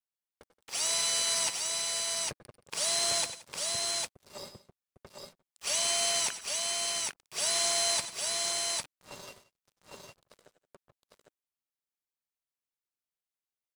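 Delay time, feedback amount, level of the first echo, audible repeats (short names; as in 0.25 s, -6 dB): 91 ms, no steady repeat, -14.0 dB, 3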